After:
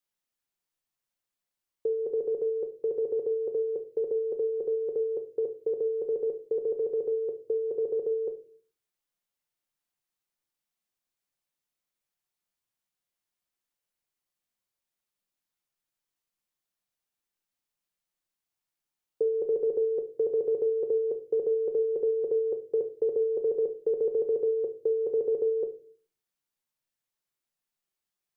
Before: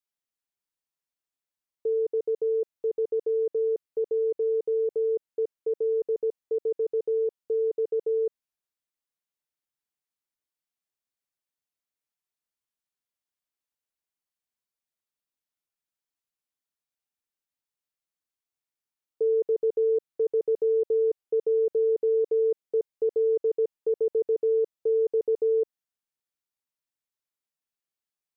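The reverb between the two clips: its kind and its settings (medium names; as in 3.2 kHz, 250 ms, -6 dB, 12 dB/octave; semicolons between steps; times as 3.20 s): simulated room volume 330 m³, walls furnished, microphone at 0.91 m; trim +2 dB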